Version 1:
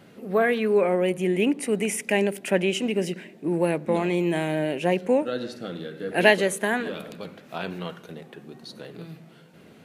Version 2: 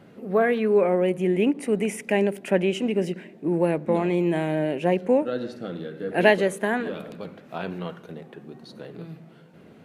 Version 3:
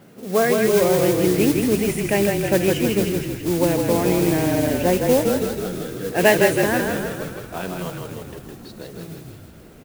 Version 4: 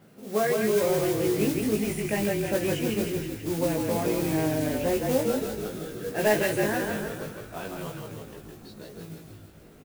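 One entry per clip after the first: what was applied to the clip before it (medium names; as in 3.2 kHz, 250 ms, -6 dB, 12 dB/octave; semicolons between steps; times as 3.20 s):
treble shelf 2.3 kHz -9.5 dB; endings held to a fixed fall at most 480 dB/s; trim +1.5 dB
modulation noise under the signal 13 dB; on a send: frequency-shifting echo 160 ms, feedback 59%, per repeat -32 Hz, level -4 dB; on the sum: trim +2 dB
saturation -6.5 dBFS, distortion -23 dB; doubling 19 ms -2.5 dB; trim -8.5 dB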